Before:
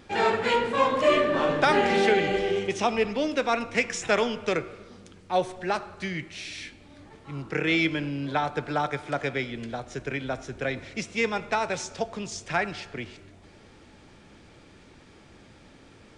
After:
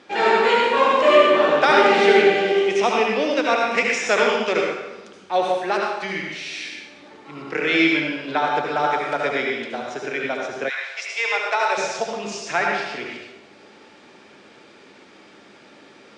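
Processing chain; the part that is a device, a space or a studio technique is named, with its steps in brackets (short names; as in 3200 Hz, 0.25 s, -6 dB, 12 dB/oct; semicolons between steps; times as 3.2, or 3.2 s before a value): supermarket ceiling speaker (BPF 310–6400 Hz; reverb RT60 0.90 s, pre-delay 66 ms, DRR -1 dB); 10.68–11.76 HPF 960 Hz -> 390 Hz 24 dB/oct; gain +4 dB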